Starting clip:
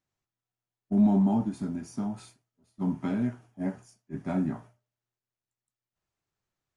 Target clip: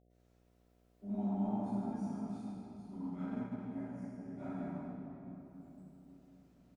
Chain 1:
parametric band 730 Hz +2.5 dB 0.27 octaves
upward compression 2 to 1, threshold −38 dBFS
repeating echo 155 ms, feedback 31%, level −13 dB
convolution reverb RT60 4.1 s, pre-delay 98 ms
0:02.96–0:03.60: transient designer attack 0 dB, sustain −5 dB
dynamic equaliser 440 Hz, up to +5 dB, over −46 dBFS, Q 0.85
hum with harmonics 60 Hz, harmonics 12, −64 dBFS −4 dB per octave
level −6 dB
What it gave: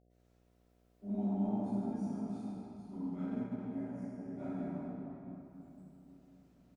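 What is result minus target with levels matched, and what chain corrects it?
1,000 Hz band −3.0 dB
parametric band 730 Hz +2.5 dB 0.27 octaves
upward compression 2 to 1, threshold −38 dBFS
repeating echo 155 ms, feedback 31%, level −13 dB
convolution reverb RT60 4.1 s, pre-delay 98 ms
0:02.96–0:03.60: transient designer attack 0 dB, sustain −5 dB
dynamic equaliser 1,000 Hz, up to +5 dB, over −46 dBFS, Q 0.85
hum with harmonics 60 Hz, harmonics 12, −64 dBFS −4 dB per octave
level −6 dB

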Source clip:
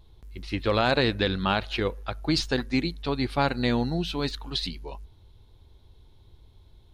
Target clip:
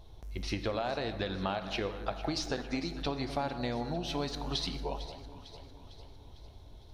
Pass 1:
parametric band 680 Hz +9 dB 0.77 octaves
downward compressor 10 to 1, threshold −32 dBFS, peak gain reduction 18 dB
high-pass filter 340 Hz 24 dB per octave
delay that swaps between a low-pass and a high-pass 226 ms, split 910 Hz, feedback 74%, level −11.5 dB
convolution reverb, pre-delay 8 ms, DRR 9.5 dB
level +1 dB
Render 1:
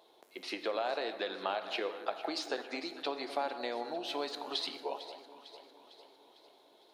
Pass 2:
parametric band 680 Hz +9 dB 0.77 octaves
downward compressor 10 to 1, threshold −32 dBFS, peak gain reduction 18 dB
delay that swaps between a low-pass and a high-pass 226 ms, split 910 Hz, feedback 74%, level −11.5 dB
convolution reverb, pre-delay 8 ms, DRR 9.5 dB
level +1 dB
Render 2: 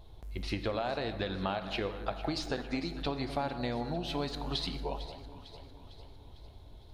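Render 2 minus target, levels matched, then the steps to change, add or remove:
8,000 Hz band −5.5 dB
add after downward compressor: parametric band 5,800 Hz +9 dB 0.25 octaves

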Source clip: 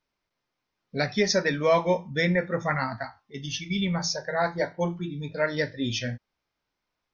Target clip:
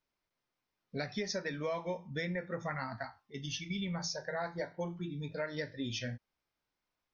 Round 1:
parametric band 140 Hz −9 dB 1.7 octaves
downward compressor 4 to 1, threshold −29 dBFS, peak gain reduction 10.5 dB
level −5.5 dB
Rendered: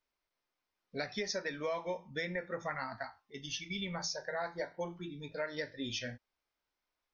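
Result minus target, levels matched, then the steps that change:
125 Hz band −6.0 dB
remove: parametric band 140 Hz −9 dB 1.7 octaves

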